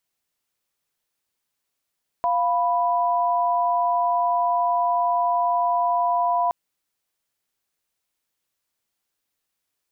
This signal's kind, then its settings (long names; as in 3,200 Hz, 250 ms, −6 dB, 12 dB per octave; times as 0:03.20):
held notes F5/B5 sine, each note −21 dBFS 4.27 s